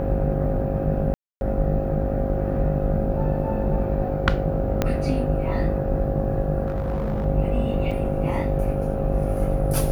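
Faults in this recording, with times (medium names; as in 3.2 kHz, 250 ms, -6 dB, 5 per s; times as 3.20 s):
buzz 50 Hz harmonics 16 -27 dBFS
whine 540 Hz -28 dBFS
1.14–1.41 s: dropout 271 ms
4.82 s: pop -7 dBFS
6.66–7.26 s: clipped -21 dBFS
7.91–7.92 s: dropout 5.6 ms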